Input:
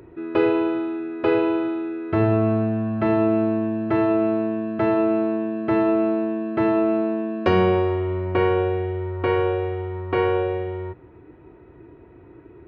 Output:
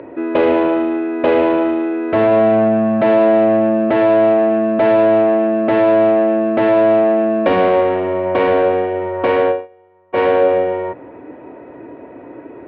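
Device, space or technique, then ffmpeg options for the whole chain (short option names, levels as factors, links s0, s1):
overdrive pedal into a guitar cabinet: -filter_complex "[0:a]asplit=3[s0][s1][s2];[s0]afade=t=out:st=9.31:d=0.02[s3];[s1]agate=range=0.0282:threshold=0.1:ratio=16:detection=peak,afade=t=in:st=9.31:d=0.02,afade=t=out:st=10.2:d=0.02[s4];[s2]afade=t=in:st=10.2:d=0.02[s5];[s3][s4][s5]amix=inputs=3:normalize=0,asplit=2[s6][s7];[s7]highpass=f=720:p=1,volume=20,asoftclip=type=tanh:threshold=0.562[s8];[s6][s8]amix=inputs=2:normalize=0,lowpass=f=1100:p=1,volume=0.501,highpass=80,equalizer=f=96:t=q:w=4:g=-7,equalizer=f=160:t=q:w=4:g=-5,equalizer=f=260:t=q:w=4:g=7,equalizer=f=370:t=q:w=4:g=-7,equalizer=f=570:t=q:w=4:g=9,equalizer=f=1300:t=q:w=4:g=-6,lowpass=f=3600:w=0.5412,lowpass=f=3600:w=1.3066"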